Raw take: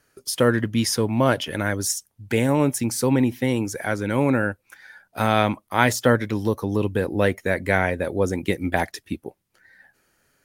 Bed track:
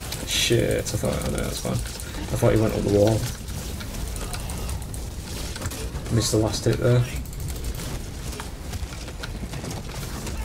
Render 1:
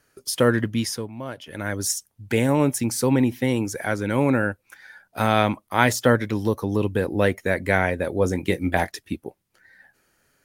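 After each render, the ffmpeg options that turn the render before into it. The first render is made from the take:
-filter_complex "[0:a]asettb=1/sr,asplit=3[a][b][c];[a]atrim=end=8.194[d];[b]atrim=start=8.19:end=8.89,asetpts=PTS-STARTPTS,afade=t=in:d=0.004:c=qsin,afade=t=out:st=0.696:d=0.004:c=qsin,asplit=2[e][f];[f]adelay=22,volume=-10.5dB[g];[e][g]amix=inputs=2:normalize=0,atrim=end_sample=30870[h];[c]atrim=start=8.886[i];[d][h]acrossfade=d=0.004:c1=hsin:c2=qsin[j];[j][i]acrossfade=d=0.004:c1=qsin:c2=hsin,asplit=3[k][l][m];[k]atrim=end=1.12,asetpts=PTS-STARTPTS,afade=t=out:st=0.64:d=0.48:silence=0.188365[n];[l]atrim=start=1.12:end=1.41,asetpts=PTS-STARTPTS,volume=-14.5dB[o];[m]atrim=start=1.41,asetpts=PTS-STARTPTS,afade=t=in:d=0.48:silence=0.188365[p];[n][o][p]concat=n=3:v=0:a=1"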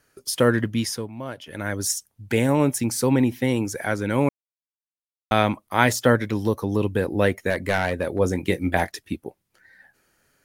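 -filter_complex "[0:a]asettb=1/sr,asplit=3[a][b][c];[a]atrim=end=7.504[d];[b]atrim=start=7.5:end=8.19,asetpts=PTS-STARTPTS,afade=t=in:d=0.004:c=qsin,afade=t=out:st=0.686:d=0.004:c=qsin,aeval=exprs='clip(val(0),-1,0.158)':c=same[e];[c]atrim=start=8.186[f];[d][e]acrossfade=d=0.004:c1=hsin:c2=qsin[g];[g][f]acrossfade=d=0.004:c1=qsin:c2=hsin,asplit=3[h][i][j];[h]atrim=end=4.29,asetpts=PTS-STARTPTS,afade=t=out:st=4.286:d=0.004:c=hsin[k];[i]atrim=start=4.29:end=5.31,asetpts=PTS-STARTPTS,volume=0[l];[j]atrim=start=5.31,asetpts=PTS-STARTPTS,afade=t=in:d=0.004:c=hsin[m];[k][l][m]concat=n=3:v=0:a=1"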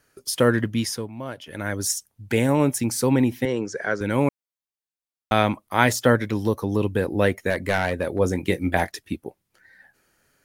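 -filter_complex "[0:a]asettb=1/sr,asplit=3[a][b][c];[a]atrim=end=3.454[d];[b]atrim=start=3.45:end=4.01,asetpts=PTS-STARTPTS,afade=t=in:d=0.004:c=qsin,afade=t=out:st=0.556:d=0.004:c=qsin,highpass=180,equalizer=f=270:t=q:w=4:g=-9,equalizer=f=430:t=q:w=4:g=6,equalizer=f=840:t=q:w=4:g=-7,equalizer=f=1.6k:t=q:w=4:g=4,equalizer=f=2.4k:t=q:w=4:g=-7,equalizer=f=3.6k:t=q:w=4:g=-7,lowpass=f=6.3k:w=0.5412,lowpass=f=6.3k:w=1.3066[e];[c]atrim=start=4.006[f];[d][e]acrossfade=d=0.004:c1=hsin:c2=qsin[g];[g][f]acrossfade=d=0.004:c1=qsin:c2=hsin"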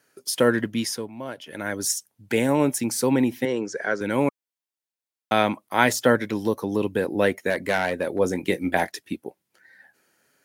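-af "highpass=180,bandreject=f=1.2k:w=14"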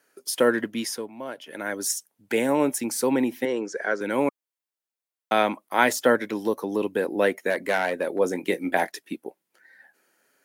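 -af "highpass=250,equalizer=f=4.8k:t=o:w=1.7:g=-3"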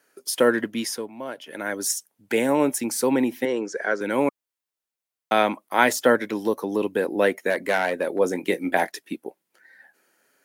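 -af "volume=1.5dB"

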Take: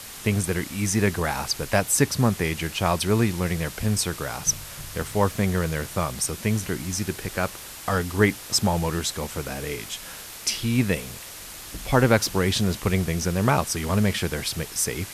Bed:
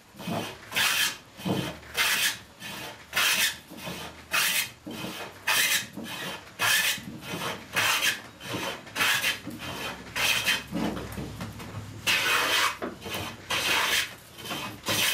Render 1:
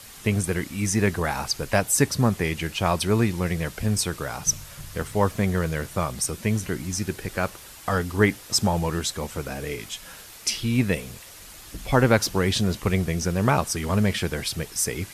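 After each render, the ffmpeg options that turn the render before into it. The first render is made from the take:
-af "afftdn=nr=6:nf=-40"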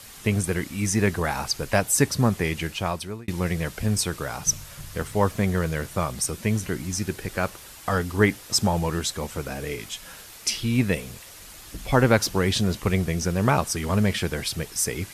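-filter_complex "[0:a]asplit=2[a][b];[a]atrim=end=3.28,asetpts=PTS-STARTPTS,afade=t=out:st=2.62:d=0.66[c];[b]atrim=start=3.28,asetpts=PTS-STARTPTS,afade=t=in:d=0.004:c=hsin[d];[c][d]concat=n=2:v=0:a=1"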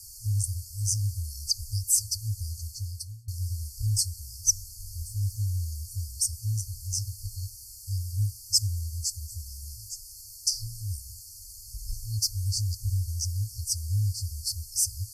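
-af "afftfilt=real='re*(1-between(b*sr/4096,110,4300))':imag='im*(1-between(b*sr/4096,110,4300))':win_size=4096:overlap=0.75"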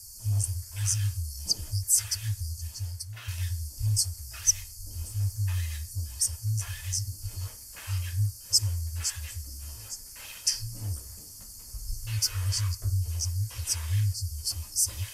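-filter_complex "[1:a]volume=-21.5dB[a];[0:a][a]amix=inputs=2:normalize=0"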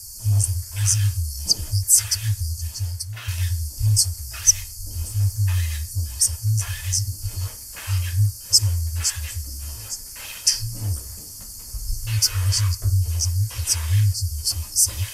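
-af "volume=8dB,alimiter=limit=-2dB:level=0:latency=1"

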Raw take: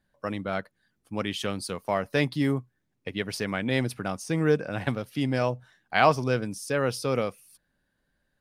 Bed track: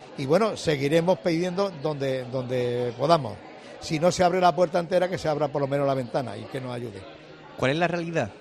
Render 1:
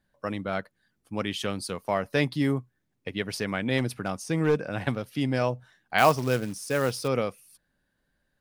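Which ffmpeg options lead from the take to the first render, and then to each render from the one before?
-filter_complex "[0:a]asettb=1/sr,asplit=3[a][b][c];[a]atrim=end=3.784[d];[b]atrim=start=3.78:end=4.68,asetpts=PTS-STARTPTS,afade=t=in:d=0.004:c=qsin,afade=t=out:st=0.896:d=0.004:c=qsin,asoftclip=type=hard:threshold=-16.5dB[e];[c]atrim=start=4.676[f];[d][e]acrossfade=d=0.004:c1=hsin:c2=qsin[g];[g][f]acrossfade=d=0.004:c1=qsin:c2=hsin,asettb=1/sr,asplit=3[h][i][j];[h]atrim=end=5.984[k];[i]atrim=start=5.98:end=7.08,asetpts=PTS-STARTPTS,afade=t=in:d=0.004:c=qsin,afade=t=out:st=1.096:d=0.004:c=qsin,acrusher=bits=4:mode=log:mix=0:aa=0.000001[l];[j]atrim=start=7.076[m];[k][l]acrossfade=d=0.004:c1=hsin:c2=qsin[n];[n][m]acrossfade=d=0.004:c1=qsin:c2=hsin"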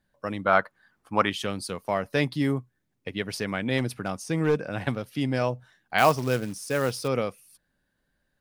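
-filter_complex "[0:a]asettb=1/sr,asplit=3[a][b][c];[a]atrim=end=0.464[d];[b]atrim=start=0.46:end=1.3,asetpts=PTS-STARTPTS,afade=t=in:d=0.004:c=qsin,afade=t=out:st=0.836:d=0.004:c=qsin,equalizer=f=1.1k:t=o:w=1.9:g=15[e];[c]atrim=start=1.296[f];[d][e]acrossfade=d=0.004:c1=hsin:c2=qsin[g];[g][f]acrossfade=d=0.004:c1=qsin:c2=hsin"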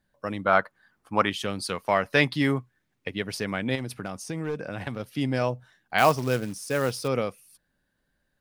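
-filter_complex "[0:a]asettb=1/sr,asplit=3[a][b][c];[a]atrim=end=1.594[d];[b]atrim=start=1.59:end=3.08,asetpts=PTS-STARTPTS,afade=t=in:d=0.004:c=qsin,afade=t=out:st=1.486:d=0.004:c=qsin,equalizer=f=2k:w=0.43:g=7.5[e];[c]atrim=start=3.076[f];[d][e]acrossfade=d=0.004:c1=hsin:c2=qsin[g];[g][f]acrossfade=d=0.004:c1=qsin:c2=hsin,asettb=1/sr,asplit=3[h][i][j];[h]atrim=end=3.754[k];[i]atrim=start=3.75:end=5,asetpts=PTS-STARTPTS,afade=t=in:d=0.004:c=qsin,afade=t=out:st=1.246:d=0.004:c=qsin,acompressor=threshold=-28dB:ratio=4:attack=3.2:release=140:knee=1:detection=peak[l];[j]atrim=start=4.996[m];[k][l]acrossfade=d=0.004:c1=hsin:c2=qsin[n];[n][m]acrossfade=d=0.004:c1=qsin:c2=hsin"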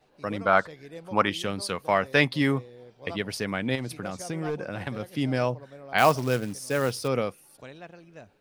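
-filter_complex "[1:a]volume=-21dB[a];[0:a][a]amix=inputs=2:normalize=0"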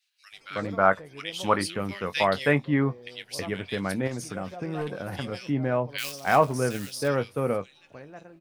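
-filter_complex "[0:a]asplit=2[a][b];[b]adelay=21,volume=-12dB[c];[a][c]amix=inputs=2:normalize=0,acrossover=split=2300[d][e];[d]adelay=320[f];[f][e]amix=inputs=2:normalize=0"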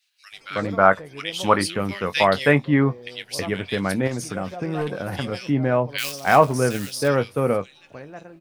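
-af "volume=5.5dB,alimiter=limit=-2dB:level=0:latency=1"

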